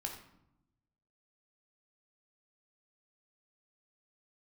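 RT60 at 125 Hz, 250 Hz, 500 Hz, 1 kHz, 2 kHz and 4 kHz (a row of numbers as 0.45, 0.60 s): 1.4, 1.2, 0.80, 0.80, 0.60, 0.50 s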